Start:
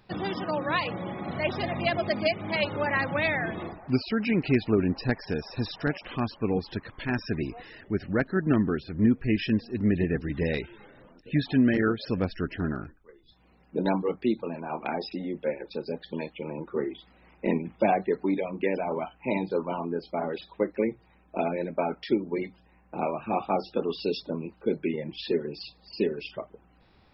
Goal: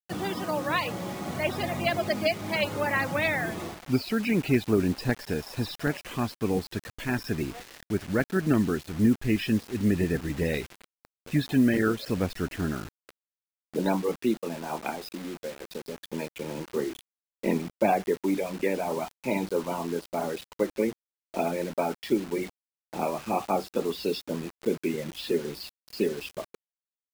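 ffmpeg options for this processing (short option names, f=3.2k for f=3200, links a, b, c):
-filter_complex "[0:a]asettb=1/sr,asplit=3[a][b][c];[a]atrim=end=14.904[d];[b]atrim=start=14.9:end=15.98,asetpts=PTS-STARTPTS,afade=t=in:d=0.004:c=qsin,afade=t=out:st=1.076:d=0.004:c=qsin,acompressor=threshold=-33dB:ratio=8[e];[c]atrim=start=15.976[f];[d][e]acrossfade=d=0.004:c1=hsin:c2=qsin[g];[g][f]acrossfade=d=0.004:c1=qsin:c2=hsin,acrusher=bits=6:mix=0:aa=0.000001"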